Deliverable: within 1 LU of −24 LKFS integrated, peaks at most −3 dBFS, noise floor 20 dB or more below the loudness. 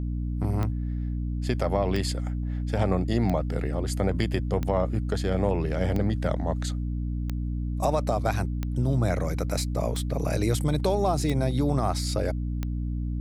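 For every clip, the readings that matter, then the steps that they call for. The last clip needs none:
number of clicks 10; mains hum 60 Hz; hum harmonics up to 300 Hz; level of the hum −26 dBFS; integrated loudness −27.5 LKFS; sample peak −11.0 dBFS; target loudness −24.0 LKFS
→ click removal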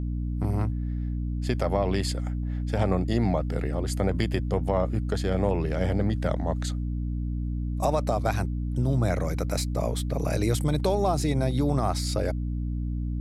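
number of clicks 0; mains hum 60 Hz; hum harmonics up to 300 Hz; level of the hum −26 dBFS
→ hum removal 60 Hz, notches 5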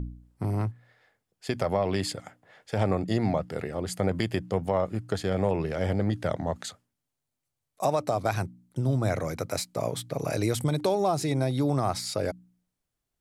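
mains hum none found; integrated loudness −29.0 LKFS; sample peak −13.0 dBFS; target loudness −24.0 LKFS
→ level +5 dB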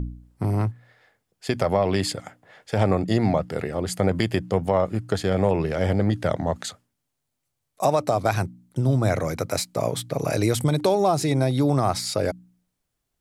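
integrated loudness −24.0 LKFS; sample peak −8.0 dBFS; background noise floor −79 dBFS

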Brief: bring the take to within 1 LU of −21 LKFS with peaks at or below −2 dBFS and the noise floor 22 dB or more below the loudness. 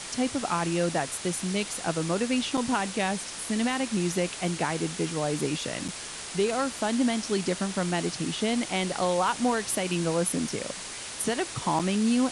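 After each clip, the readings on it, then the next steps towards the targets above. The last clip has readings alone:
number of dropouts 3; longest dropout 5.5 ms; background noise floor −39 dBFS; target noise floor −50 dBFS; integrated loudness −28.0 LKFS; sample peak −14.5 dBFS; target loudness −21.0 LKFS
→ repair the gap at 0:02.57/0:05.88/0:11.79, 5.5 ms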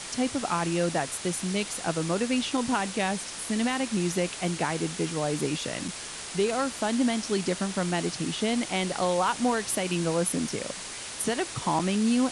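number of dropouts 0; background noise floor −39 dBFS; target noise floor −50 dBFS
→ broadband denoise 11 dB, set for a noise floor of −39 dBFS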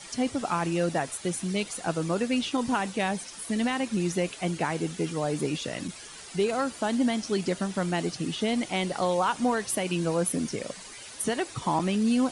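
background noise floor −44 dBFS; target noise floor −51 dBFS
→ broadband denoise 7 dB, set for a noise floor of −44 dBFS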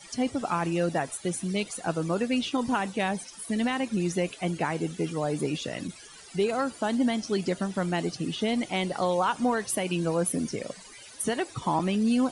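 background noise floor −48 dBFS; target noise floor −51 dBFS
→ broadband denoise 6 dB, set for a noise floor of −48 dBFS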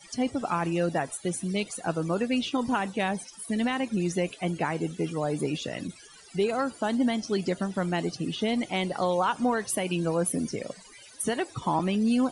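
background noise floor −51 dBFS; integrated loudness −28.5 LKFS; sample peak −15.5 dBFS; target loudness −21.0 LKFS
→ level +7.5 dB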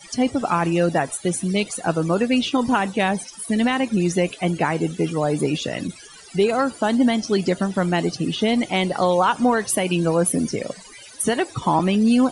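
integrated loudness −21.0 LKFS; sample peak −8.0 dBFS; background noise floor −43 dBFS

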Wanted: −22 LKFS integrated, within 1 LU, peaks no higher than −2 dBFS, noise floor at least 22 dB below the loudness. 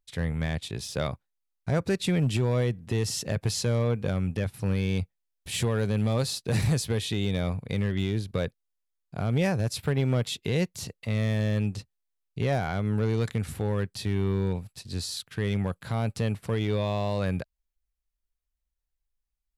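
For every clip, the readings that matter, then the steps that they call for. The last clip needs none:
share of clipped samples 0.8%; peaks flattened at −18.5 dBFS; integrated loudness −28.5 LKFS; sample peak −18.5 dBFS; target loudness −22.0 LKFS
→ clipped peaks rebuilt −18.5 dBFS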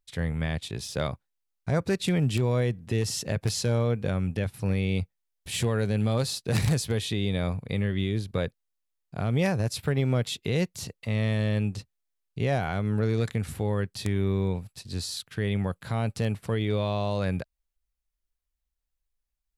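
share of clipped samples 0.0%; integrated loudness −28.5 LKFS; sample peak −9.5 dBFS; target loudness −22.0 LKFS
→ level +6.5 dB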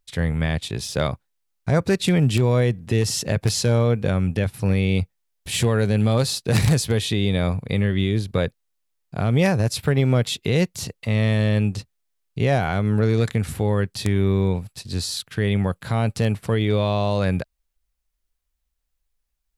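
integrated loudness −22.0 LKFS; sample peak −3.0 dBFS; background noise floor −76 dBFS

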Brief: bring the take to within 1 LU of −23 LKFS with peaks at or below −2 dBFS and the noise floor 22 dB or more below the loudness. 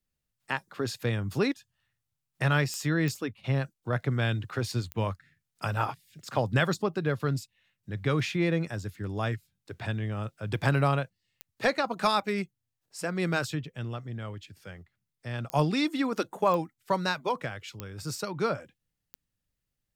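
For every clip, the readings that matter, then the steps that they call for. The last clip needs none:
number of clicks 8; integrated loudness −30.0 LKFS; sample peak −12.5 dBFS; target loudness −23.0 LKFS
→ click removal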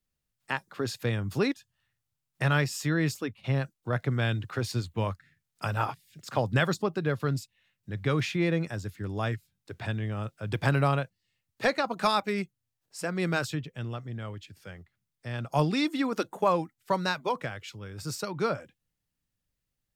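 number of clicks 0; integrated loudness −30.0 LKFS; sample peak −12.5 dBFS; target loudness −23.0 LKFS
→ level +7 dB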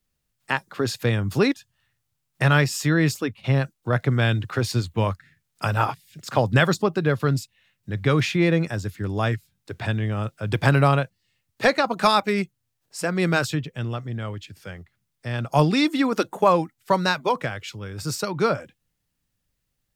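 integrated loudness −23.0 LKFS; sample peak −5.5 dBFS; background noise floor −77 dBFS

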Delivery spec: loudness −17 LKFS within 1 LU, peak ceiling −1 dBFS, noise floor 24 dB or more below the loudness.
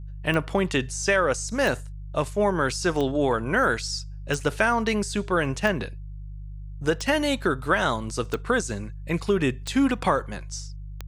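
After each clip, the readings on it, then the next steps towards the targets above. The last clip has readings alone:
number of clicks 9; mains hum 50 Hz; hum harmonics up to 150 Hz; level of the hum −34 dBFS; integrated loudness −25.0 LKFS; sample peak −8.0 dBFS; target loudness −17.0 LKFS
→ click removal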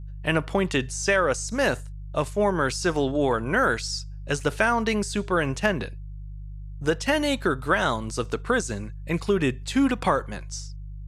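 number of clicks 0; mains hum 50 Hz; hum harmonics up to 150 Hz; level of the hum −34 dBFS
→ hum removal 50 Hz, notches 3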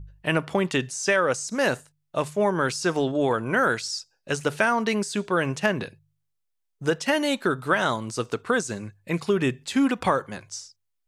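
mains hum none found; integrated loudness −25.0 LKFS; sample peak −8.0 dBFS; target loudness −17.0 LKFS
→ level +8 dB
brickwall limiter −1 dBFS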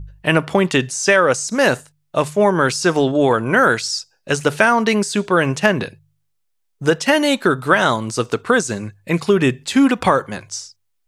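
integrated loudness −17.0 LKFS; sample peak −1.0 dBFS; background noise floor −68 dBFS

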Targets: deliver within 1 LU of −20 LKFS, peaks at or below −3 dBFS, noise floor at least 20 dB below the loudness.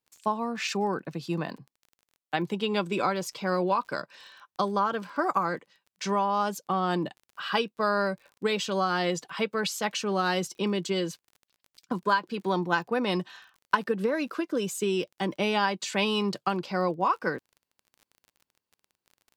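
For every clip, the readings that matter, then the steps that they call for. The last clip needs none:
crackle rate 26 per second; integrated loudness −29.0 LKFS; sample peak −10.0 dBFS; target loudness −20.0 LKFS
→ click removal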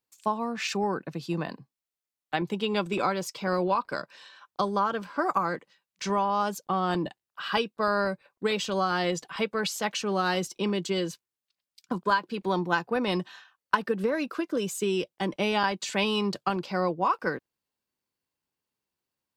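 crackle rate 0.10 per second; integrated loudness −29.0 LKFS; sample peak −10.0 dBFS; target loudness −20.0 LKFS
→ level +9 dB
brickwall limiter −3 dBFS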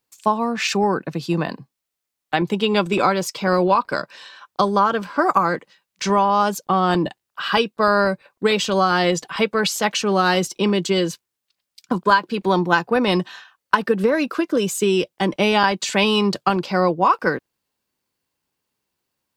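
integrated loudness −20.0 LKFS; sample peak −3.0 dBFS; background noise floor −82 dBFS

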